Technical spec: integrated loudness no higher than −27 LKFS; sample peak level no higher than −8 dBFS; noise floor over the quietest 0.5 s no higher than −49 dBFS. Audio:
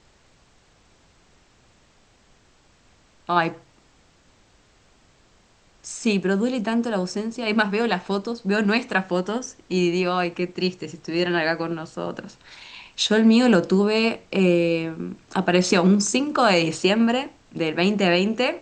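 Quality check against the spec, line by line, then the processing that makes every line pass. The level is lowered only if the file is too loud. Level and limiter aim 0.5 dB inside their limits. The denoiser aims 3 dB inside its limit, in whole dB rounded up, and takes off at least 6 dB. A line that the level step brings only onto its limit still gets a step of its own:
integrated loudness −22.0 LKFS: out of spec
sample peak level −5.0 dBFS: out of spec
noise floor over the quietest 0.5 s −58 dBFS: in spec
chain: level −5.5 dB

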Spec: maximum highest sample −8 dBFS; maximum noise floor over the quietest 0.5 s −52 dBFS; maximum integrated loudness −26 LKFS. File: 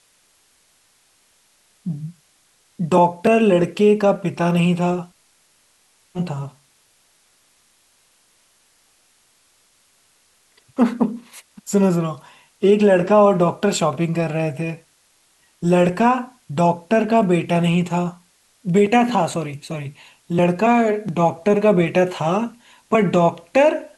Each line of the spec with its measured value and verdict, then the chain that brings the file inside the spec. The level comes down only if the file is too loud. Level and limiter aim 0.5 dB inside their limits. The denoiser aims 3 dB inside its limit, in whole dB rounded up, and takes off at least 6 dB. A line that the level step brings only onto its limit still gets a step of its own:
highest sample −4.0 dBFS: out of spec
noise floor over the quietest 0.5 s −60 dBFS: in spec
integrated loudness −18.5 LKFS: out of spec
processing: level −8 dB

